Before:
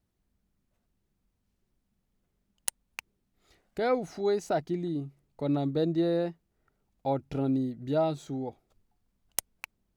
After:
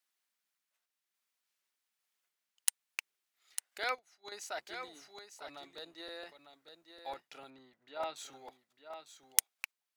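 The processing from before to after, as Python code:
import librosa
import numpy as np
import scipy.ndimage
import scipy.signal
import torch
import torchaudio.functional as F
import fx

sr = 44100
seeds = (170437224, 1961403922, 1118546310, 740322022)

y = fx.octave_divider(x, sr, octaves=1, level_db=-6.0)
y = scipy.signal.sosfilt(scipy.signal.butter(2, 1500.0, 'highpass', fs=sr, output='sos'), y)
y = fx.tremolo_random(y, sr, seeds[0], hz=3.5, depth_pct=55)
y = fx.lowpass(y, sr, hz=3100.0, slope=12, at=(7.5, 8.16))
y = y + 10.0 ** (-9.0 / 20.0) * np.pad(y, (int(901 * sr / 1000.0), 0))[:len(y)]
y = fx.buffer_crackle(y, sr, first_s=0.98, period_s=0.15, block=128, kind='repeat')
y = fx.upward_expand(y, sr, threshold_db=-57.0, expansion=2.5, at=(3.92, 4.32))
y = F.gain(torch.from_numpy(y), 4.0).numpy()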